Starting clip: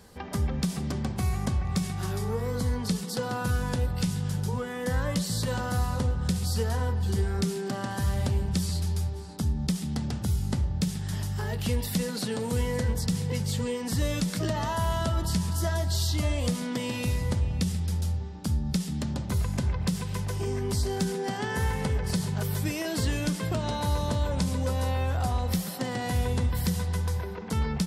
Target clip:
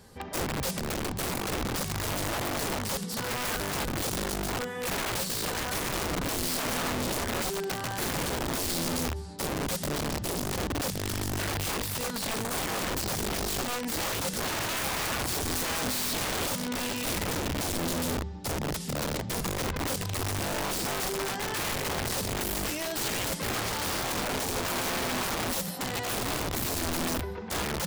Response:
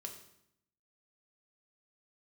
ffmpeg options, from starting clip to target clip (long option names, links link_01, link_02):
-af "bandreject=frequency=250.7:width_type=h:width=4,bandreject=frequency=501.4:width_type=h:width=4,bandreject=frequency=752.1:width_type=h:width=4,bandreject=frequency=1002.8:width_type=h:width=4,bandreject=frequency=1253.5:width_type=h:width=4,bandreject=frequency=1504.2:width_type=h:width=4,bandreject=frequency=1754.9:width_type=h:width=4,bandreject=frequency=2005.6:width_type=h:width=4,bandreject=frequency=2256.3:width_type=h:width=4,bandreject=frequency=2507:width_type=h:width=4,bandreject=frequency=2757.7:width_type=h:width=4,bandreject=frequency=3008.4:width_type=h:width=4,bandreject=frequency=3259.1:width_type=h:width=4,bandreject=frequency=3509.8:width_type=h:width=4,bandreject=frequency=3760.5:width_type=h:width=4,bandreject=frequency=4011.2:width_type=h:width=4,bandreject=frequency=4261.9:width_type=h:width=4,bandreject=frequency=4512.6:width_type=h:width=4,bandreject=frequency=4763.3:width_type=h:width=4,bandreject=frequency=5014:width_type=h:width=4,bandreject=frequency=5264.7:width_type=h:width=4,bandreject=frequency=5515.4:width_type=h:width=4,bandreject=frequency=5766.1:width_type=h:width=4,bandreject=frequency=6016.8:width_type=h:width=4,bandreject=frequency=6267.5:width_type=h:width=4,bandreject=frequency=6518.2:width_type=h:width=4,bandreject=frequency=6768.9:width_type=h:width=4,bandreject=frequency=7019.6:width_type=h:width=4,bandreject=frequency=7270.3:width_type=h:width=4,bandreject=frequency=7521:width_type=h:width=4,flanger=delay=7.6:depth=5.7:regen=-56:speed=0.26:shape=sinusoidal,aeval=exprs='(mod(31.6*val(0)+1,2)-1)/31.6':channel_layout=same,volume=4dB"